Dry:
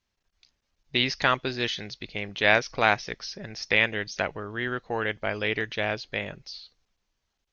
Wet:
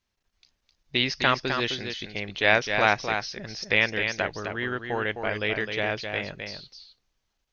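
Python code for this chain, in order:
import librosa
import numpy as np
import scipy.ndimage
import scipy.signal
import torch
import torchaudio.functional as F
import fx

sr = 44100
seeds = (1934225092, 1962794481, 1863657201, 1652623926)

y = x + 10.0 ** (-6.5 / 20.0) * np.pad(x, (int(259 * sr / 1000.0), 0))[:len(x)]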